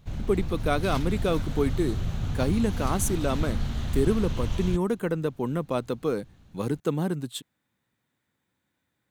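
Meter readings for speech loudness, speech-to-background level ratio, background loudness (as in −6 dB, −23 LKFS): −28.5 LKFS, 3.5 dB, −32.0 LKFS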